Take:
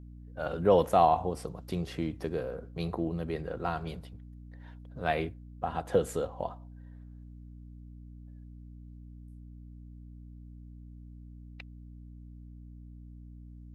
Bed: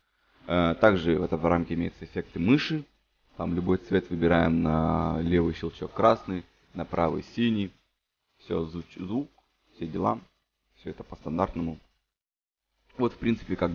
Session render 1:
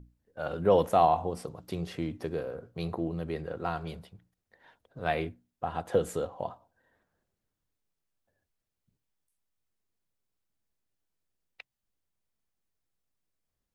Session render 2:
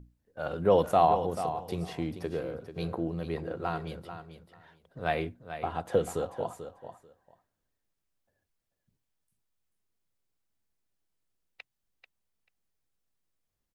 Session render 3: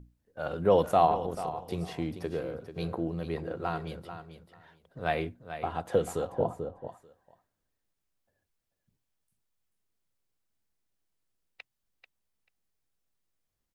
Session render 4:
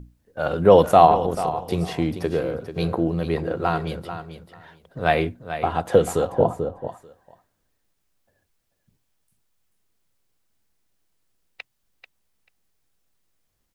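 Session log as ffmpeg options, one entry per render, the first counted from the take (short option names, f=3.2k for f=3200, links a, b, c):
-af "bandreject=f=60:t=h:w=6,bandreject=f=120:t=h:w=6,bandreject=f=180:t=h:w=6,bandreject=f=240:t=h:w=6,bandreject=f=300:t=h:w=6"
-af "aecho=1:1:439|878:0.299|0.0478"
-filter_complex "[0:a]asettb=1/sr,asplit=3[a][b][c];[a]atrim=end=1.074[d];[b]atrim=start=1.07:end=1.71,asetpts=PTS-STARTPTS,afade=t=in:d=0.004:c=qsin,afade=t=out:st=0.636:d=0.004:c=qsin,tremolo=f=220:d=0.571[e];[c]atrim=start=1.706[f];[d][e]acrossfade=d=0.004:c1=hsin:c2=qsin[g];[g][f]acrossfade=d=0.004:c1=qsin:c2=hsin,asettb=1/sr,asplit=3[h][i][j];[h]atrim=end=6.324[k];[i]atrim=start=6.32:end=6.88,asetpts=PTS-STARTPTS,afade=t=in:d=0.004:c=qsin,afade=t=out:st=0.556:d=0.004:c=qsin,tiltshelf=f=1.1k:g=9[l];[j]atrim=start=6.876[m];[k][l]acrossfade=d=0.004:c1=hsin:c2=qsin[n];[n][m]acrossfade=d=0.004:c1=qsin:c2=hsin"
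-af "volume=10dB"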